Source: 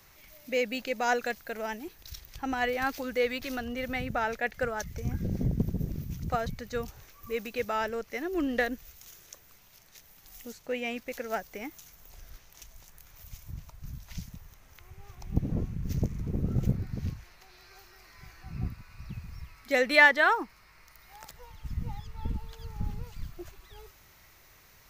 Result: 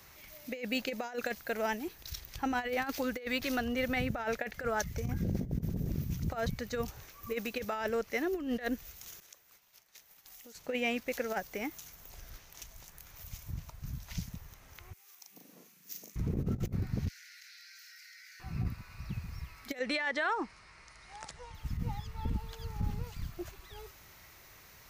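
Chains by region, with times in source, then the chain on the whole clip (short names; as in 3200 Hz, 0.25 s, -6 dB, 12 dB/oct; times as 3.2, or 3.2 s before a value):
9.2–10.55 expander -52 dBFS + low shelf 290 Hz -11 dB + compressor, threshold -51 dBFS
14.93–16.16 steep high-pass 170 Hz + differentiator + doubler 39 ms -3 dB
17.08–18.4 rippled Chebyshev high-pass 1400 Hz, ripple 6 dB + fast leveller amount 100%
19.79–21.55 steep low-pass 10000 Hz 96 dB/oct + compressor 3:1, threshold -32 dBFS
whole clip: HPF 40 Hz 6 dB/oct; negative-ratio compressor -32 dBFS, ratio -0.5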